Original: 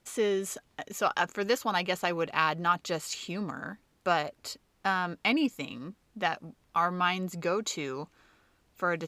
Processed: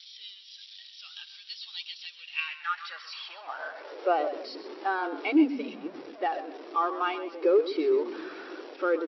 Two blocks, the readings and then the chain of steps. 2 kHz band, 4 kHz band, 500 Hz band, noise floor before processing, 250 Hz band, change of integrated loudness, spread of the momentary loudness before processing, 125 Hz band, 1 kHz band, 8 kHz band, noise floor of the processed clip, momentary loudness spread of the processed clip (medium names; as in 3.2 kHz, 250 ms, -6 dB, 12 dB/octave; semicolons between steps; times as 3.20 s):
-4.0 dB, -2.5 dB, +3.5 dB, -69 dBFS, +3.5 dB, +0.5 dB, 13 LU, under -25 dB, -2.0 dB, under -20 dB, -50 dBFS, 19 LU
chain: jump at every zero crossing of -25 dBFS; FFT band-pass 270–5800 Hz; high-pass sweep 3.6 kHz -> 360 Hz, 2.10–4.17 s; on a send: frequency-shifting echo 129 ms, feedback 46%, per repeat -35 Hz, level -9 dB; on the sum: spectral contrast expander 1.5:1; trim -4.5 dB